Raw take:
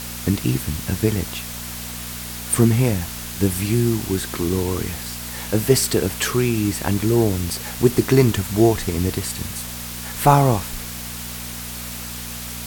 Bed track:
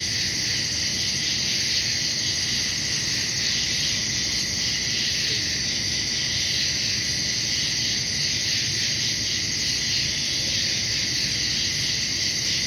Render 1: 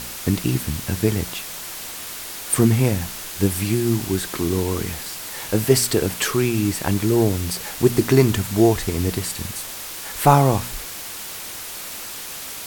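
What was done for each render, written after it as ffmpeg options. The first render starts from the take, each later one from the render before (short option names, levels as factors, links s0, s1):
-af "bandreject=f=60:t=h:w=4,bandreject=f=120:t=h:w=4,bandreject=f=180:t=h:w=4,bandreject=f=240:t=h:w=4"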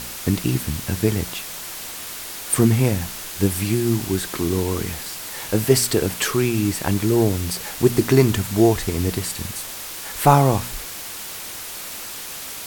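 -af anull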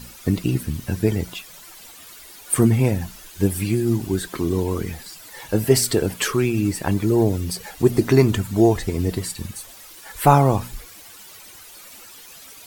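-af "afftdn=nr=13:nf=-33"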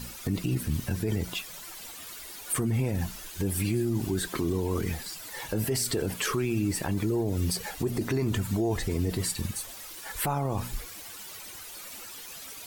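-af "acompressor=threshold=0.0891:ratio=2,alimiter=limit=0.106:level=0:latency=1:release=16"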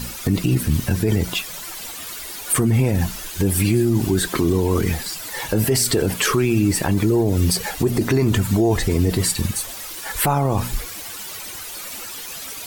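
-af "volume=3.16"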